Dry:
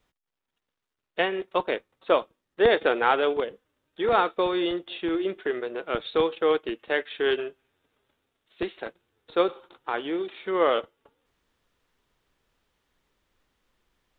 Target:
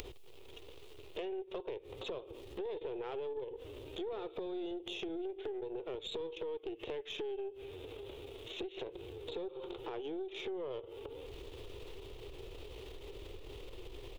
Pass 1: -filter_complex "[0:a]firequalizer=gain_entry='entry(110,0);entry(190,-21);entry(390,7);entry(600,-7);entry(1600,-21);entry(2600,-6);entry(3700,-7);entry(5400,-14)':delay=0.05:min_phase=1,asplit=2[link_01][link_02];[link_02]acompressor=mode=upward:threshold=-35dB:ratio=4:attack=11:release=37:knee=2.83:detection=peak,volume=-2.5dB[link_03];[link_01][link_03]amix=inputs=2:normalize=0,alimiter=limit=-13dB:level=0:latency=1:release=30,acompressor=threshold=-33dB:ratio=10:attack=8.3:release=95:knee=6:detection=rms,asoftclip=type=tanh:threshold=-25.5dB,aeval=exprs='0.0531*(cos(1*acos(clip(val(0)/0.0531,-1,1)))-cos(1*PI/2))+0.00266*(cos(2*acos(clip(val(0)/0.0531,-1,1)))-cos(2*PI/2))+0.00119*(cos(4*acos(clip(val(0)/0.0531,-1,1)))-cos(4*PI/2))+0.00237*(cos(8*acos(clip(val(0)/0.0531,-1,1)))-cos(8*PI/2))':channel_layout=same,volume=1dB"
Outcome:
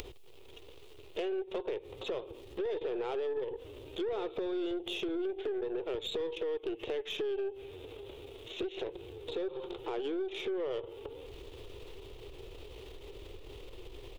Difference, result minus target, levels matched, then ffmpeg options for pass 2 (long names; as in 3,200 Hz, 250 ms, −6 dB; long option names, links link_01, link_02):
downward compressor: peak gain reduction −6.5 dB
-filter_complex "[0:a]firequalizer=gain_entry='entry(110,0);entry(190,-21);entry(390,7);entry(600,-7);entry(1600,-21);entry(2600,-6);entry(3700,-7);entry(5400,-14)':delay=0.05:min_phase=1,asplit=2[link_01][link_02];[link_02]acompressor=mode=upward:threshold=-35dB:ratio=4:attack=11:release=37:knee=2.83:detection=peak,volume=-2.5dB[link_03];[link_01][link_03]amix=inputs=2:normalize=0,alimiter=limit=-13dB:level=0:latency=1:release=30,acompressor=threshold=-40dB:ratio=10:attack=8.3:release=95:knee=6:detection=rms,asoftclip=type=tanh:threshold=-25.5dB,aeval=exprs='0.0531*(cos(1*acos(clip(val(0)/0.0531,-1,1)))-cos(1*PI/2))+0.00266*(cos(2*acos(clip(val(0)/0.0531,-1,1)))-cos(2*PI/2))+0.00119*(cos(4*acos(clip(val(0)/0.0531,-1,1)))-cos(4*PI/2))+0.00237*(cos(8*acos(clip(val(0)/0.0531,-1,1)))-cos(8*PI/2))':channel_layout=same,volume=1dB"